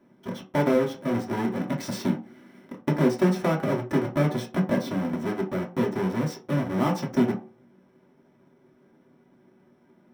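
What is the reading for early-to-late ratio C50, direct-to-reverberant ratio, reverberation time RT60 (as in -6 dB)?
11.0 dB, -2.5 dB, not exponential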